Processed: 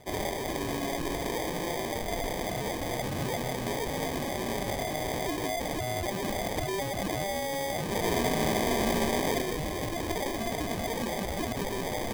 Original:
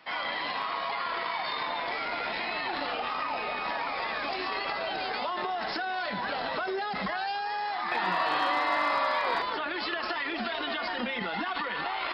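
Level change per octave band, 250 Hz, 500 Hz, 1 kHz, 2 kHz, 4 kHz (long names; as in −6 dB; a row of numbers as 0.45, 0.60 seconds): +7.5, +4.5, −5.0, −5.5, −2.0 decibels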